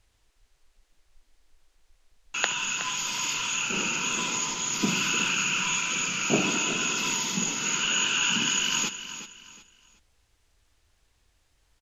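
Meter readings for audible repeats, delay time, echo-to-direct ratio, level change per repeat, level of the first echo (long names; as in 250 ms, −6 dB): 3, 368 ms, −11.5 dB, −10.5 dB, −12.0 dB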